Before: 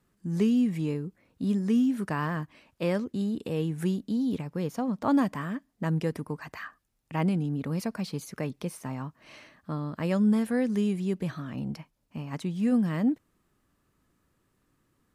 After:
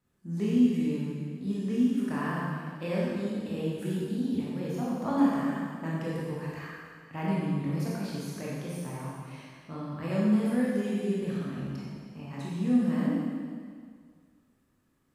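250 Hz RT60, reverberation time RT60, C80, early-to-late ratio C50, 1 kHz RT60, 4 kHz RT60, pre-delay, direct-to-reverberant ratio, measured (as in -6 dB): 2.0 s, 2.0 s, -0.5 dB, -3.0 dB, 2.0 s, 1.9 s, 14 ms, -7.0 dB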